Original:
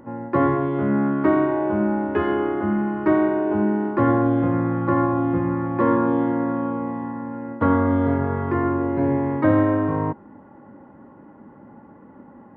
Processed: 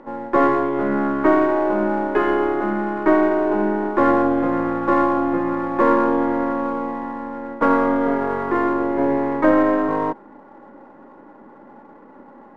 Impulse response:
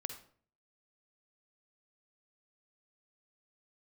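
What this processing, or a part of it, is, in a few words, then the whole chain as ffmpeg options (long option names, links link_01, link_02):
crystal radio: -af "highpass=340,lowpass=2800,aeval=exprs='if(lt(val(0),0),0.708*val(0),val(0))':channel_layout=same,volume=6.5dB"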